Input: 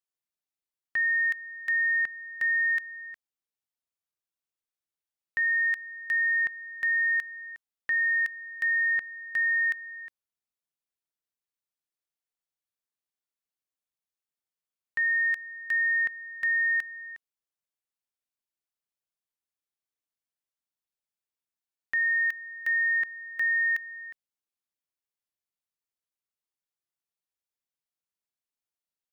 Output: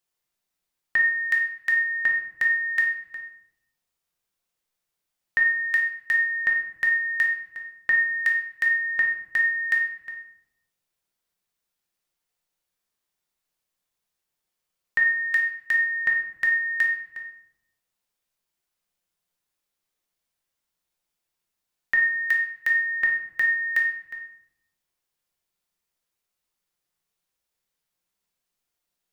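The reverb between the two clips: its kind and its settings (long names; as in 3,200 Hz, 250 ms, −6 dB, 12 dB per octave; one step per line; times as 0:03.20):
rectangular room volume 170 cubic metres, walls mixed, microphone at 0.9 metres
level +8 dB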